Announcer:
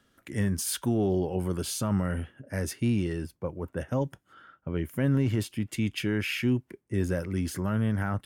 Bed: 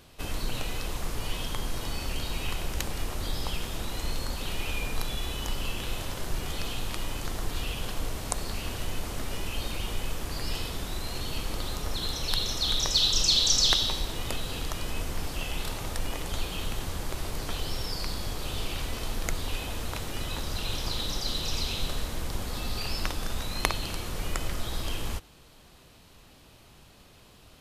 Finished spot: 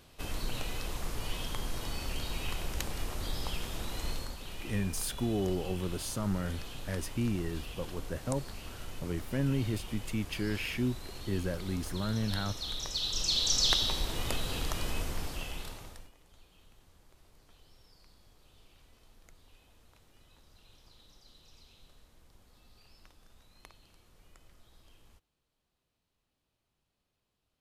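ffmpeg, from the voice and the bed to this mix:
-filter_complex "[0:a]adelay=4350,volume=0.531[s0];[1:a]volume=1.88,afade=t=out:st=4.1:d=0.27:silence=0.473151,afade=t=in:st=13:d=1.19:silence=0.334965,afade=t=out:st=14.86:d=1.25:silence=0.0421697[s1];[s0][s1]amix=inputs=2:normalize=0"

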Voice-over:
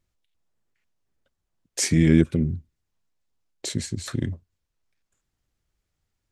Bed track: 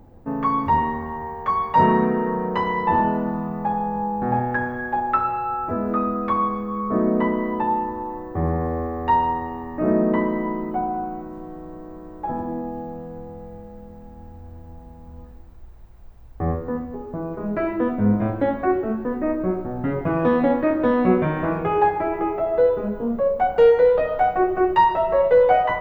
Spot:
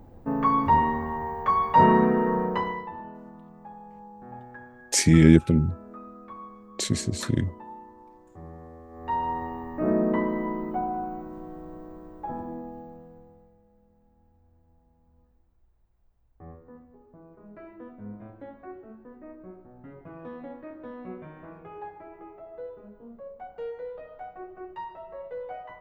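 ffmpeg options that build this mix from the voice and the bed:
-filter_complex "[0:a]adelay=3150,volume=1.26[s0];[1:a]volume=5.96,afade=t=out:st=2.39:d=0.52:silence=0.1,afade=t=in:st=8.88:d=0.56:silence=0.149624,afade=t=out:st=11.76:d=1.79:silence=0.133352[s1];[s0][s1]amix=inputs=2:normalize=0"

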